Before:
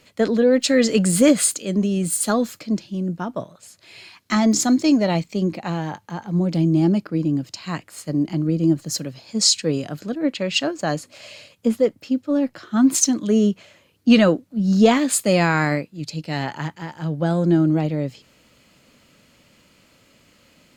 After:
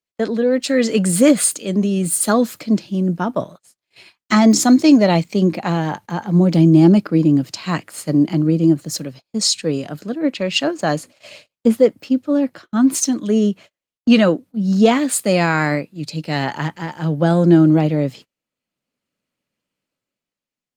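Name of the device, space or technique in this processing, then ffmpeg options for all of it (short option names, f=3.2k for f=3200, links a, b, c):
video call: -af "highpass=120,dynaudnorm=f=140:g=13:m=15dB,agate=range=-37dB:threshold=-34dB:ratio=16:detection=peak,volume=-1dB" -ar 48000 -c:a libopus -b:a 32k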